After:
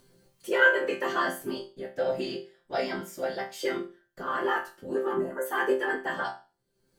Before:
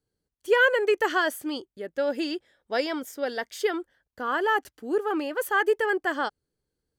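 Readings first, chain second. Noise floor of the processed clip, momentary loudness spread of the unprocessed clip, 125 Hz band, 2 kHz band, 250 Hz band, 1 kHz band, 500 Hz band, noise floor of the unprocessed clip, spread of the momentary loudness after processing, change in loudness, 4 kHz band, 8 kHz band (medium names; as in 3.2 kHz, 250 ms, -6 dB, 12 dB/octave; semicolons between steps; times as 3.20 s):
-74 dBFS, 13 LU, no reading, -1.5 dB, -3.5 dB, -3.0 dB, -3.0 dB, -85 dBFS, 15 LU, -2.5 dB, -4.0 dB, -3.5 dB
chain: whisper effect; in parallel at -2.5 dB: upward compressor, threshold -26 dBFS; on the sum: time-frequency box 5.14–5.45 s, 2.1–6.1 kHz -22 dB; chord resonator C3 sus4, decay 0.34 s; trim +6 dB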